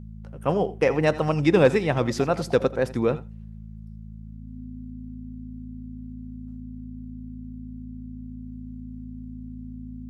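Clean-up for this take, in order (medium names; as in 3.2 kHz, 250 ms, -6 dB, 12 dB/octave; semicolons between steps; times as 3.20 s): clip repair -8 dBFS; de-hum 54.1 Hz, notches 4; band-stop 250 Hz, Q 30; inverse comb 82 ms -18.5 dB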